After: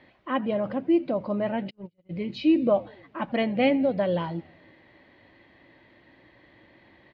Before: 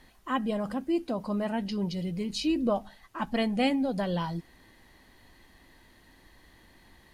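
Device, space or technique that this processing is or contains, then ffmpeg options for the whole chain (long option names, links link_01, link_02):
frequency-shifting delay pedal into a guitar cabinet: -filter_complex "[0:a]asplit=6[link_01][link_02][link_03][link_04][link_05][link_06];[link_02]adelay=84,afreqshift=-84,volume=-22.5dB[link_07];[link_03]adelay=168,afreqshift=-168,volume=-26.8dB[link_08];[link_04]adelay=252,afreqshift=-252,volume=-31.1dB[link_09];[link_05]adelay=336,afreqshift=-336,volume=-35.4dB[link_10];[link_06]adelay=420,afreqshift=-420,volume=-39.7dB[link_11];[link_01][link_07][link_08][link_09][link_10][link_11]amix=inputs=6:normalize=0,highpass=96,equalizer=frequency=120:width_type=q:width=4:gain=6,equalizer=frequency=320:width_type=q:width=4:gain=7,equalizer=frequency=570:width_type=q:width=4:gain=10,equalizer=frequency=2200:width_type=q:width=4:gain=6,lowpass=frequency=3600:width=0.5412,lowpass=frequency=3600:width=1.3066,asplit=3[link_12][link_13][link_14];[link_12]afade=type=out:start_time=1.69:duration=0.02[link_15];[link_13]agate=range=-44dB:threshold=-25dB:ratio=16:detection=peak,afade=type=in:start_time=1.69:duration=0.02,afade=type=out:start_time=2.09:duration=0.02[link_16];[link_14]afade=type=in:start_time=2.09:duration=0.02[link_17];[link_15][link_16][link_17]amix=inputs=3:normalize=0"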